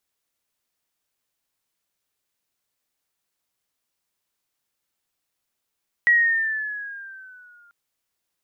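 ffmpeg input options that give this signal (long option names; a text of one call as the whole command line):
ffmpeg -f lavfi -i "aevalsrc='pow(10,(-12-39*t/1.64)/20)*sin(2*PI*1920*1.64/(-5.5*log(2)/12)*(exp(-5.5*log(2)/12*t/1.64)-1))':duration=1.64:sample_rate=44100" out.wav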